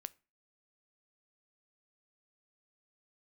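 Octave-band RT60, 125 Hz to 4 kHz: 0.35, 0.35, 0.35, 0.35, 0.35, 0.25 seconds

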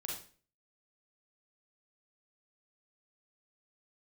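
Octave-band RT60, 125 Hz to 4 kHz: 0.55, 0.50, 0.45, 0.40, 0.40, 0.40 seconds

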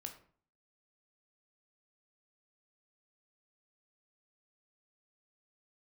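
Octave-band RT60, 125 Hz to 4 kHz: 0.65, 0.60, 0.50, 0.50, 0.40, 0.30 seconds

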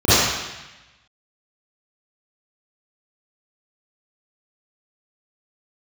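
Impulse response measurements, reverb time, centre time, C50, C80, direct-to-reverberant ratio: 1.0 s, 130 ms, −10.5 dB, −3.0 dB, −16.5 dB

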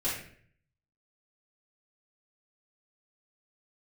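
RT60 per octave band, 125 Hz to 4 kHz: 0.85, 0.70, 0.65, 0.50, 0.60, 0.45 seconds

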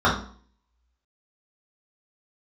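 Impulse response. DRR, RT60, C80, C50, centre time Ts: −8.5 dB, 0.50 s, 11.5 dB, 6.5 dB, 29 ms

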